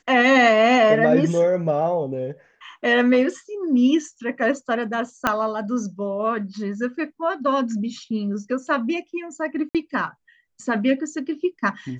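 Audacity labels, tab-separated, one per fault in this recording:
5.270000	5.270000	pop -5 dBFS
9.690000	9.750000	dropout 57 ms

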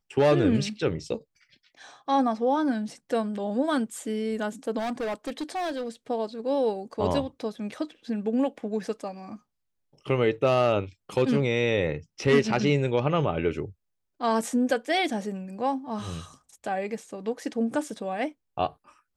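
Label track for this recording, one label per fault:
4.780000	5.890000	clipped -27 dBFS

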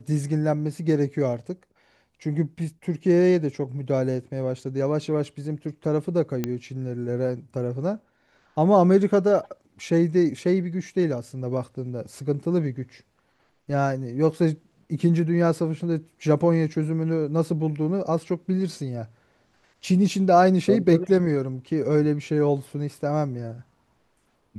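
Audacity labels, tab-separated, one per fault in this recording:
6.440000	6.440000	pop -12 dBFS

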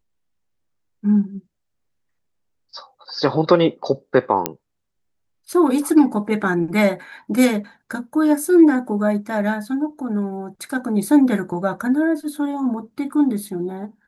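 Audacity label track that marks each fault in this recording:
4.460000	4.460000	pop -2 dBFS

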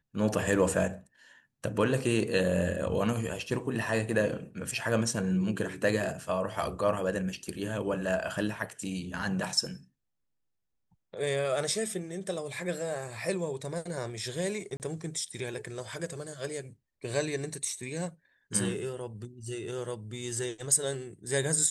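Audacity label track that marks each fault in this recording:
14.770000	14.800000	dropout 29 ms

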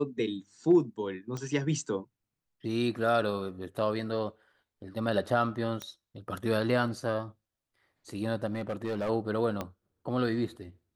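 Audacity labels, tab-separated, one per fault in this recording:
1.370000	1.370000	pop -25 dBFS
5.820000	5.820000	pop -22 dBFS
8.460000	9.100000	clipped -27.5 dBFS
9.610000	9.610000	pop -19 dBFS

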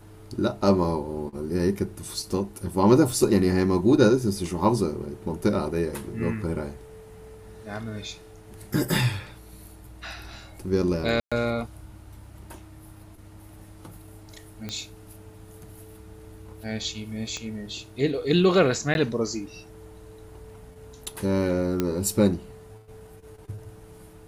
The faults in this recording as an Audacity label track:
11.200000	11.320000	dropout 116 ms
14.690000	14.690000	pop -18 dBFS
17.370000	17.370000	pop -20 dBFS
18.940000	18.950000	dropout 11 ms
21.800000	21.800000	pop -11 dBFS

